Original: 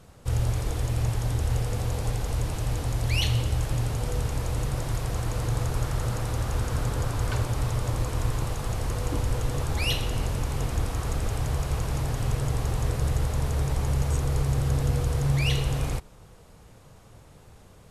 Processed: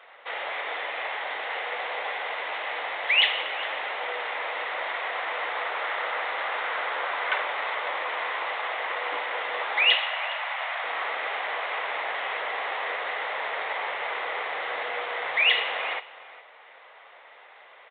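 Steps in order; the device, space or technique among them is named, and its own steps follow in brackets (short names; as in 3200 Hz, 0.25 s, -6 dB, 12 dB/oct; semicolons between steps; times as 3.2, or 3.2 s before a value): 9.95–10.84 Chebyshev high-pass 600 Hz, order 4; musical greeting card (downsampling 8000 Hz; HPF 620 Hz 24 dB/oct; bell 2000 Hz +11 dB 0.37 oct); echo 0.413 s -18.5 dB; gain +8 dB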